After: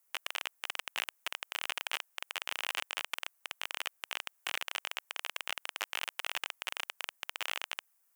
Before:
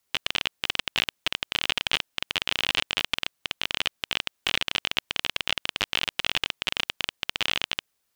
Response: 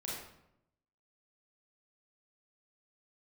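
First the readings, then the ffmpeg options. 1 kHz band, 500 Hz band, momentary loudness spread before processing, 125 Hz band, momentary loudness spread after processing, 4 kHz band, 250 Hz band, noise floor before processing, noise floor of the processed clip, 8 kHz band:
-6.0 dB, -10.5 dB, 4 LU, under -35 dB, 4 LU, -12.5 dB, -21.0 dB, -76 dBFS, -74 dBFS, -5.0 dB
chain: -af "highpass=720,highshelf=f=5500:g=5.5,alimiter=limit=0.299:level=0:latency=1:release=19,equalizer=f=3900:t=o:w=1.3:g=-13"

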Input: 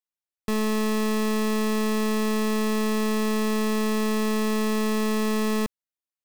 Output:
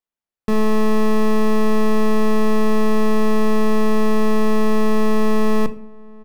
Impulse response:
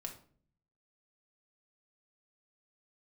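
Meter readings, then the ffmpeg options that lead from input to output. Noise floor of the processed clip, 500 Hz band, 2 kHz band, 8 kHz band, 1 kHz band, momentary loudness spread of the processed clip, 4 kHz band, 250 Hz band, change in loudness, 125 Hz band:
under -85 dBFS, +7.0 dB, +2.5 dB, -3.5 dB, +7.0 dB, 2 LU, -1.0 dB, +5.5 dB, +5.5 dB, no reading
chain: -filter_complex "[0:a]highshelf=f=2600:g=-11,asplit=2[s0][s1];[s1]adelay=1108,volume=0.0631,highshelf=f=4000:g=-24.9[s2];[s0][s2]amix=inputs=2:normalize=0,asplit=2[s3][s4];[1:a]atrim=start_sample=2205[s5];[s4][s5]afir=irnorm=-1:irlink=0,volume=1[s6];[s3][s6]amix=inputs=2:normalize=0,volume=1.33"

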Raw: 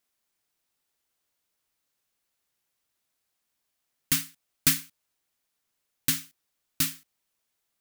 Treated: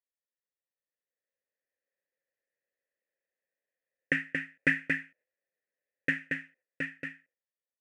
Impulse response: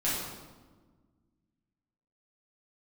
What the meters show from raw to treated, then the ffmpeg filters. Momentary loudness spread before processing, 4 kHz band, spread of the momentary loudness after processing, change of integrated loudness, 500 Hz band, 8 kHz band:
7 LU, -16.5 dB, 10 LU, -5.5 dB, +11.5 dB, under -30 dB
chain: -filter_complex "[0:a]agate=range=0.2:threshold=0.00178:ratio=16:detection=peak,asplit=3[s0][s1][s2];[s0]bandpass=f=530:t=q:w=8,volume=1[s3];[s1]bandpass=f=1840:t=q:w=8,volume=0.501[s4];[s2]bandpass=f=2480:t=q:w=8,volume=0.355[s5];[s3][s4][s5]amix=inputs=3:normalize=0,tiltshelf=f=880:g=5,dynaudnorm=f=290:g=9:m=4.47,highshelf=f=2800:t=q:w=3:g=-12.5,aecho=1:1:229:0.596,aresample=22050,aresample=44100,volume=1.5"

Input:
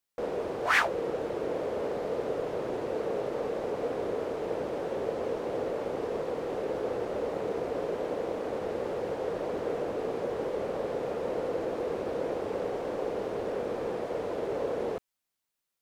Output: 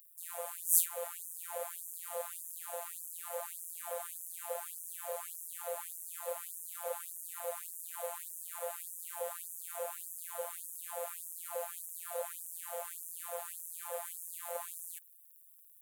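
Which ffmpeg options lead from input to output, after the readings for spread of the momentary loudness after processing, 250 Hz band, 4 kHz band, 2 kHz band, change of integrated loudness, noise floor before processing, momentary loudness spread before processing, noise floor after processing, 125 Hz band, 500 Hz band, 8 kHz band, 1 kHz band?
3 LU, under -40 dB, -9.0 dB, -16.5 dB, -7.0 dB, -85 dBFS, 1 LU, -60 dBFS, under -40 dB, -14.5 dB, no reading, -10.0 dB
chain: -af "aexciter=amount=10.5:drive=9.8:freq=8000,equalizer=f=2000:w=2.4:g=-2.5,afftfilt=real='hypot(re,im)*cos(PI*b)':imag='0':win_size=1024:overlap=0.75,afftfilt=real='re*gte(b*sr/1024,480*pow(5700/480,0.5+0.5*sin(2*PI*1.7*pts/sr)))':imag='im*gte(b*sr/1024,480*pow(5700/480,0.5+0.5*sin(2*PI*1.7*pts/sr)))':win_size=1024:overlap=0.75"

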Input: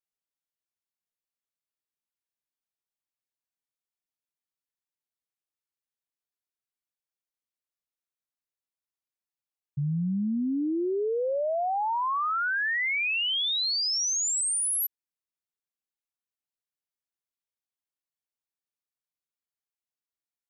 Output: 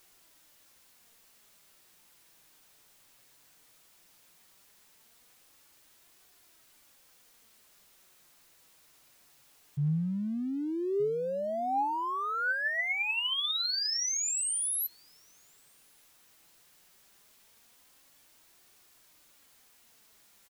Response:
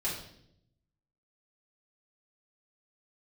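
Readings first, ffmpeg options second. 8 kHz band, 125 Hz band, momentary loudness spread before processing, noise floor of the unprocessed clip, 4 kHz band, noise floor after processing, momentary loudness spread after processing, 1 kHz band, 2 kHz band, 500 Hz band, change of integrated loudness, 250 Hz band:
-4.0 dB, -1.0 dB, 4 LU, under -85 dBFS, -4.0 dB, -63 dBFS, 6 LU, -4.0 dB, -3.5 dB, -3.5 dB, -4.0 dB, -4.5 dB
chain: -filter_complex "[0:a]aeval=exprs='val(0)+0.5*0.00398*sgn(val(0))':c=same,asplit=2[s0][s1];[s1]adelay=1224,volume=0.178,highshelf=f=4000:g=-27.6[s2];[s0][s2]amix=inputs=2:normalize=0,flanger=delay=2.6:depth=4.7:regen=66:speed=0.16:shape=triangular"

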